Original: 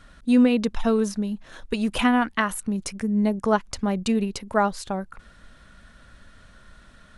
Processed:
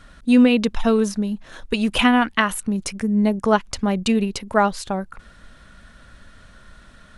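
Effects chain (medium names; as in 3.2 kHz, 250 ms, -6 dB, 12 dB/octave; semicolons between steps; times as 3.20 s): dynamic bell 2.9 kHz, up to +5 dB, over -41 dBFS, Q 1.5; trim +3.5 dB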